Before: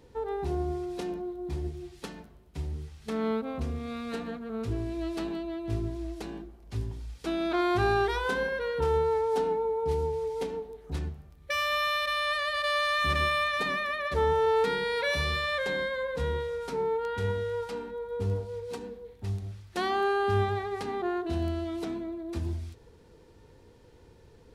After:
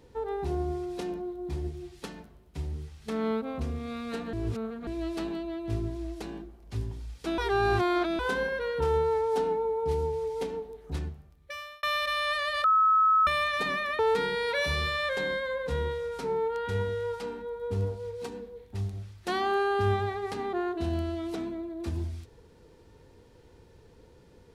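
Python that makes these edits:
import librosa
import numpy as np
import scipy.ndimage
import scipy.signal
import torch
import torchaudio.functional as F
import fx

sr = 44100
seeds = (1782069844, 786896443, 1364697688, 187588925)

y = fx.edit(x, sr, fx.reverse_span(start_s=4.33, length_s=0.54),
    fx.reverse_span(start_s=7.38, length_s=0.81),
    fx.fade_out_span(start_s=10.96, length_s=0.87),
    fx.bleep(start_s=12.64, length_s=0.63, hz=1290.0, db=-18.5),
    fx.cut(start_s=13.99, length_s=0.49), tone=tone)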